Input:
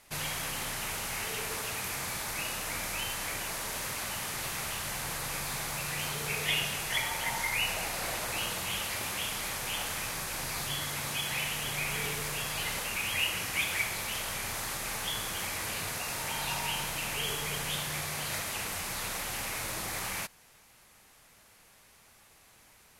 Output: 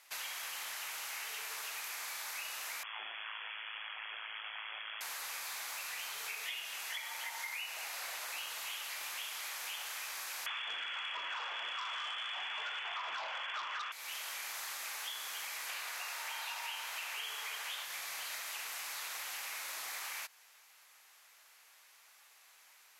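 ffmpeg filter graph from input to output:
-filter_complex "[0:a]asettb=1/sr,asplit=3[a][b][c];[a]atrim=end=2.834[d];[b]atrim=start=2.83:end=5.01,asetpts=PTS-STARTPTS,afade=t=in:d=0.004:c=qsin,afade=t=out:st=2.176:d=0.004:c=qsin,lowpass=f=2.9k:t=q:w=0.5098,lowpass=f=2.9k:t=q:w=0.6013,lowpass=f=2.9k:t=q:w=0.9,lowpass=f=2.9k:t=q:w=2.563,afreqshift=-3400,aeval=exprs='val(0)*sin(2*PI*54*n/s)':c=same,asplit=2[e][f];[f]adelay=23,volume=-11.5dB[g];[e][g]amix=inputs=2:normalize=0,atrim=end_sample=96138[h];[c]atrim=start=5.006[i];[d][h]acrossfade=d=0.004:c1=hsin:c2=qsin[j];[j][i]acrossfade=d=0.004:c1=qsin:c2=hsin,asettb=1/sr,asplit=3[k][l][m];[k]atrim=end=10.464[n];[l]atrim=start=10.46:end=13.92,asetpts=PTS-STARTPTS,afade=t=in:d=0.004:c=qsin,afade=t=out:st=3.456:d=0.004:c=qsin,lowpass=f=3k:t=q:w=0.5098,lowpass=f=3k:t=q:w=0.6013,lowpass=f=3k:t=q:w=0.9,lowpass=f=3k:t=q:w=2.563,afreqshift=-3500,aeval=exprs='val(0)+0.00355*(sin(2*PI*50*n/s)+sin(2*PI*2*50*n/s)/2+sin(2*PI*3*50*n/s)/3+sin(2*PI*4*50*n/s)/4+sin(2*PI*5*50*n/s)/5)':c=same,aeval=exprs='0.126*sin(PI/2*2.82*val(0)/0.126)':c=same[o];[m]atrim=start=13.916[p];[n][o]acrossfade=d=0.004:c1=hsin:c2=qsin[q];[q][p]acrossfade=d=0.004:c1=qsin:c2=hsin,asettb=1/sr,asplit=3[r][s][t];[r]atrim=end=15.694[u];[s]atrim=start=15.69:end=17.85,asetpts=PTS-STARTPTS,afade=t=in:d=0.004:c=qsin,afade=t=out:st=2.156:d=0.004:c=qsin,highpass=f=390:p=1,equalizer=f=1k:w=0.3:g=5.5[v];[t]atrim=start=17.846[w];[u][v]acrossfade=d=0.004:c1=hsin:c2=qsin[x];[x][w]acrossfade=d=0.004:c1=qsin:c2=hsin,highpass=980,equalizer=f=9.4k:t=o:w=0.31:g=-6,acompressor=threshold=-38dB:ratio=6,volume=-1dB"

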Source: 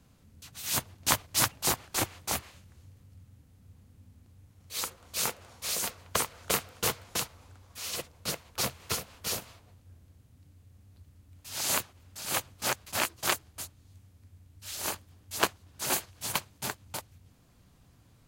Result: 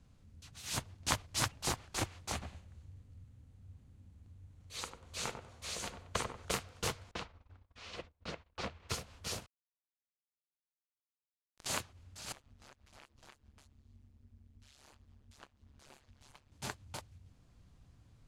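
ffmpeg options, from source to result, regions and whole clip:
-filter_complex "[0:a]asettb=1/sr,asplit=3[a][b][c];[a]atrim=end=2.324[d];[b]atrim=start=2.32:end=6.46,asetpts=PTS-STARTPTS,afade=t=in:d=0.004:c=qsin,afade=t=out:st=4.136:d=0.004:c=qsin,acrossover=split=8600[e][f];[f]acompressor=threshold=-42dB:ratio=4:attack=1:release=60[g];[e][g]amix=inputs=2:normalize=0,equalizer=f=5.2k:w=5.1:g=-4,asplit=2[h][i];[i]adelay=96,lowpass=f=920:p=1,volume=-5dB,asplit=2[j][k];[k]adelay=96,lowpass=f=920:p=1,volume=0.3,asplit=2[l][m];[m]adelay=96,lowpass=f=920:p=1,volume=0.3,asplit=2[n][o];[o]adelay=96,lowpass=f=920:p=1,volume=0.3[p];[h][j][l][n][p]amix=inputs=5:normalize=0,atrim=end_sample=182574[q];[c]atrim=start=6.456[r];[d][q]acrossfade=d=0.004:c1=hsin:c2=qsin[s];[s][r]acrossfade=d=0.004:c1=qsin:c2=hsin,asettb=1/sr,asplit=3[t][u][v];[t]atrim=end=7.114[w];[u]atrim=start=7.11:end=8.89,asetpts=PTS-STARTPTS,afade=t=in:d=0.004:c=qsin,afade=t=out:st=1.776:d=0.004:c=qsin,agate=range=-21dB:threshold=-54dB:ratio=16:release=100:detection=peak,lowpass=3.1k,equalizer=f=120:w=3.6:g=-11.5[x];[v]atrim=start=8.886[y];[w][x]acrossfade=d=0.004:c1=hsin:c2=qsin[z];[z][y]acrossfade=d=0.004:c1=qsin:c2=hsin,asettb=1/sr,asplit=3[aa][ab][ac];[aa]atrim=end=9.464[ad];[ab]atrim=start=9.46:end=11.66,asetpts=PTS-STARTPTS,afade=t=in:d=0.004:c=qsin,afade=t=out:st=2.196:d=0.004:c=qsin,aeval=exprs='val(0)+0.5*0.00473*sgn(val(0))':c=same,highshelf=f=4k:g=-7,acrusher=bits=3:mix=0:aa=0.5[ae];[ac]atrim=start=11.656[af];[ad][ae]acrossfade=d=0.004:c1=hsin:c2=qsin[ag];[ag][af]acrossfade=d=0.004:c1=qsin:c2=hsin,asettb=1/sr,asplit=3[ah][ai][aj];[ah]atrim=end=12.324[ak];[ai]atrim=start=12.32:end=16.52,asetpts=PTS-STARTPTS,afade=t=in:d=0.004:c=qsin,afade=t=out:st=4.196:d=0.004:c=qsin,tremolo=f=140:d=1,acompressor=threshold=-52dB:ratio=3:attack=3.2:release=140:knee=1:detection=peak,highshelf=f=5.6k:g=-7[al];[aj]atrim=start=16.516[am];[ak][al]acrossfade=d=0.004:c1=hsin:c2=qsin[an];[an][am]acrossfade=d=0.004:c1=qsin:c2=hsin,lowpass=8.3k,lowshelf=f=88:g=11.5,volume=-6.5dB"

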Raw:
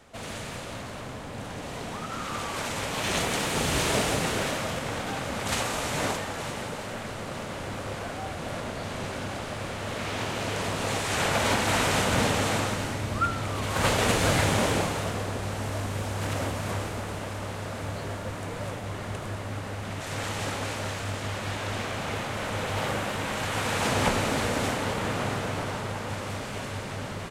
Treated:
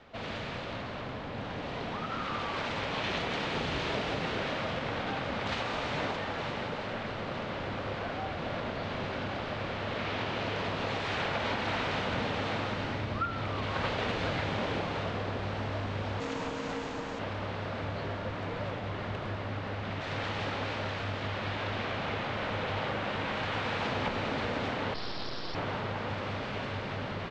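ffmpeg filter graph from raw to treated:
-filter_complex "[0:a]asettb=1/sr,asplit=3[a][b][c];[a]atrim=end=16.204[d];[b]atrim=start=16.2:end=17.19,asetpts=PTS-STARTPTS,afade=t=in:d=0.004:c=qsin,afade=t=out:st=0.986:d=0.004:c=qsin,lowpass=f=7.2k:t=q:w=5.4,aeval=exprs='val(0)*sin(2*PI*370*n/s)':c=same[e];[c]atrim=start=17.186[f];[d][e]acrossfade=d=0.004:c1=hsin:c2=qsin[g];[g][f]acrossfade=d=0.004:c1=qsin:c2=hsin,asettb=1/sr,asplit=3[h][i][j];[h]atrim=end=24.944[k];[i]atrim=start=24.94:end=25.55,asetpts=PTS-STARTPTS,afade=t=in:d=0.004:c=qsin,afade=t=out:st=0.606:d=0.004:c=qsin,lowpass=f=2.5k:t=q:w=0.5098,lowpass=f=2.5k:t=q:w=0.6013,lowpass=f=2.5k:t=q:w=0.9,lowpass=f=2.5k:t=q:w=2.563,afreqshift=-2900,aeval=exprs='abs(val(0))':c=same[l];[j]atrim=start=25.546[m];[k][l]acrossfade=d=0.004:c1=hsin:c2=qsin[n];[n][m]acrossfade=d=0.004:c1=qsin:c2=hsin,acompressor=threshold=-29dB:ratio=4,lowpass=f=4.3k:w=0.5412,lowpass=f=4.3k:w=1.3066,lowshelf=f=130:g=-3"

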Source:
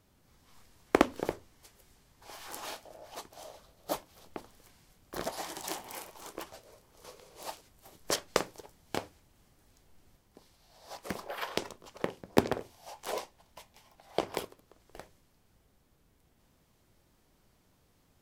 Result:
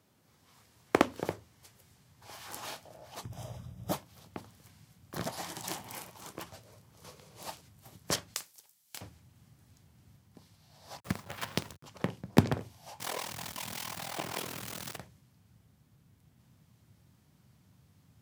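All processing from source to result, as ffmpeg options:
-filter_complex "[0:a]asettb=1/sr,asplit=3[a][b][c];[a]atrim=end=3.234[d];[b]atrim=start=3.23:end=3.92,asetpts=PTS-STARTPTS,afade=t=in:d=0.004:c=qsin,afade=t=out:st=0.686:d=0.004:c=qsin,aeval=exprs='val(0)+0.000794*(sin(2*PI*60*n/s)+sin(2*PI*2*60*n/s)/2+sin(2*PI*3*60*n/s)/3+sin(2*PI*4*60*n/s)/4+sin(2*PI*5*60*n/s)/5)':c=same,asuperstop=centerf=4300:order=8:qfactor=5.8,equalizer=f=99:t=o:w=2.5:g=14[e];[c]atrim=start=3.916[f];[d][e]acrossfade=d=0.004:c1=hsin:c2=qsin[g];[g][f]acrossfade=d=0.004:c1=qsin:c2=hsin,asettb=1/sr,asplit=3[h][i][j];[h]atrim=end=8.344[k];[i]atrim=start=8.34:end=9.01,asetpts=PTS-STARTPTS,afade=t=in:d=0.004:c=qsin,afade=t=out:st=0.666:d=0.004:c=qsin,aderivative,acrusher=bits=3:mode=log:mix=0:aa=0.000001[l];[j]atrim=start=9.006[m];[k][l]acrossfade=d=0.004:c1=hsin:c2=qsin[n];[n][m]acrossfade=d=0.004:c1=qsin:c2=hsin,asettb=1/sr,asplit=3[o][p][q];[o]atrim=end=11.004[r];[p]atrim=start=11:end=11.83,asetpts=PTS-STARTPTS,afade=t=in:d=0.004:c=qsin,afade=t=out:st=0.826:d=0.004:c=qsin,agate=range=-33dB:threshold=-52dB:ratio=3:release=100:detection=peak,acrusher=bits=6:dc=4:mix=0:aa=0.000001[s];[q]atrim=start=11.826[t];[r][s]acrossfade=d=0.004:c1=hsin:c2=qsin[u];[u][t]acrossfade=d=0.004:c1=qsin:c2=hsin,asettb=1/sr,asplit=3[v][w][x];[v]atrim=end=13.004[y];[w]atrim=start=13:end=14.97,asetpts=PTS-STARTPTS,afade=t=in:d=0.004:c=qsin,afade=t=out:st=1.966:d=0.004:c=qsin,aeval=exprs='val(0)+0.5*0.0335*sgn(val(0))':c=same,highpass=f=460:p=1,tremolo=f=41:d=0.857[z];[x]atrim=start=14.966[aa];[y][z]acrossfade=d=0.004:c1=hsin:c2=qsin[ab];[ab][aa]acrossfade=d=0.004:c1=qsin:c2=hsin,highpass=f=100:w=0.5412,highpass=f=100:w=1.3066,asubboost=boost=7:cutoff=150"

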